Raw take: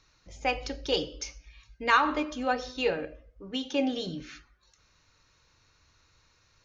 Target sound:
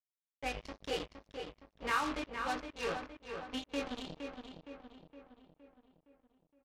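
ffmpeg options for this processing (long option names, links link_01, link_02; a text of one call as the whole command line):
ffmpeg -i in.wav -filter_complex "[0:a]lowshelf=frequency=220:gain=6,acrossover=split=130|3300[link_01][link_02][link_03];[link_03]alimiter=level_in=11.5dB:limit=-24dB:level=0:latency=1:release=67,volume=-11.5dB[link_04];[link_01][link_02][link_04]amix=inputs=3:normalize=0,flanger=delay=17:depth=7.9:speed=0.38,aeval=exprs='val(0)+0.00355*(sin(2*PI*50*n/s)+sin(2*PI*2*50*n/s)/2+sin(2*PI*3*50*n/s)/3+sin(2*PI*4*50*n/s)/4+sin(2*PI*5*50*n/s)/5)':channel_layout=same,acrusher=bits=4:mix=0:aa=0.5,atempo=1,adynamicsmooth=sensitivity=3:basefreq=5500,asplit=2[link_05][link_06];[link_06]adelay=465,lowpass=frequency=3700:poles=1,volume=-6.5dB,asplit=2[link_07][link_08];[link_08]adelay=465,lowpass=frequency=3700:poles=1,volume=0.54,asplit=2[link_09][link_10];[link_10]adelay=465,lowpass=frequency=3700:poles=1,volume=0.54,asplit=2[link_11][link_12];[link_12]adelay=465,lowpass=frequency=3700:poles=1,volume=0.54,asplit=2[link_13][link_14];[link_14]adelay=465,lowpass=frequency=3700:poles=1,volume=0.54,asplit=2[link_15][link_16];[link_16]adelay=465,lowpass=frequency=3700:poles=1,volume=0.54,asplit=2[link_17][link_18];[link_18]adelay=465,lowpass=frequency=3700:poles=1,volume=0.54[link_19];[link_07][link_09][link_11][link_13][link_15][link_17][link_19]amix=inputs=7:normalize=0[link_20];[link_05][link_20]amix=inputs=2:normalize=0,adynamicequalizer=threshold=0.00562:dfrequency=1900:dqfactor=0.7:tfrequency=1900:tqfactor=0.7:attack=5:release=100:ratio=0.375:range=2:mode=boostabove:tftype=highshelf,volume=-8.5dB" out.wav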